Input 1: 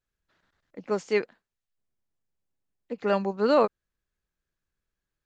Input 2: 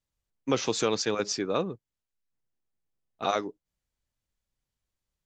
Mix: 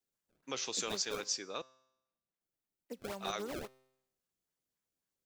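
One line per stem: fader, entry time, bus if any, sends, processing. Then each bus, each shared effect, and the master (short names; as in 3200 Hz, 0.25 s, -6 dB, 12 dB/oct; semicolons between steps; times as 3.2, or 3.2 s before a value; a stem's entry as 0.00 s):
-3.5 dB, 0.00 s, no send, HPF 150 Hz 24 dB/oct; compressor 5:1, threshold -33 dBFS, peak gain reduction 15.5 dB; decimation with a swept rate 27×, swing 160% 3.7 Hz
-8.0 dB, 0.00 s, muted 1.62–2.41, no send, tilt +3.5 dB/oct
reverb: off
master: resonator 130 Hz, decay 0.83 s, harmonics all, mix 40%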